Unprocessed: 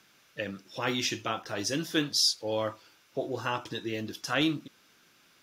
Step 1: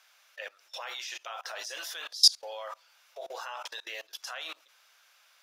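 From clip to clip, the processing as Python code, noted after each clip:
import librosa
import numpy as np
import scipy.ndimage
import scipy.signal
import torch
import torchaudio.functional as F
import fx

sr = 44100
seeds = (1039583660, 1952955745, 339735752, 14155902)

y = scipy.signal.sosfilt(scipy.signal.butter(6, 590.0, 'highpass', fs=sr, output='sos'), x)
y = fx.level_steps(y, sr, step_db=24)
y = y * librosa.db_to_amplitude(8.5)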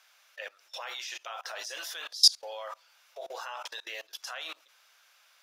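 y = x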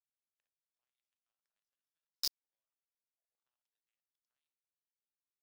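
y = fx.hum_notches(x, sr, base_hz=60, count=9)
y = fx.power_curve(y, sr, exponent=3.0)
y = y * librosa.db_to_amplitude(-7.5)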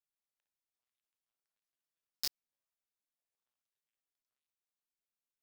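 y = fx.block_float(x, sr, bits=3)
y = y * librosa.db_to_amplitude(-1.5)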